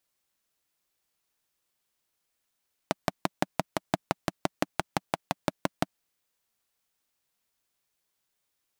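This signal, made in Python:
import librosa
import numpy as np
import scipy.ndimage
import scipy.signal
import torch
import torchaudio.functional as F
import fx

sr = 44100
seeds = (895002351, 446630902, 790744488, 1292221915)

y = fx.engine_single(sr, seeds[0], length_s=2.97, rpm=700, resonances_hz=(190.0, 290.0, 630.0))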